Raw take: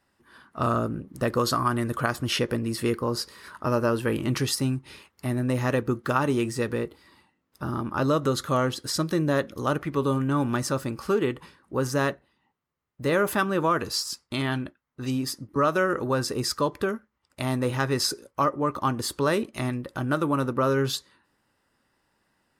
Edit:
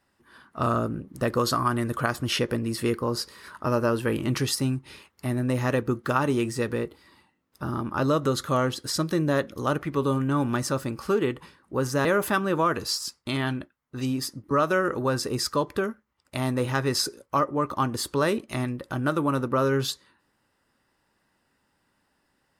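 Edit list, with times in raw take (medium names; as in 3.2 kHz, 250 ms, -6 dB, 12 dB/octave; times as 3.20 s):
12.05–13.10 s: delete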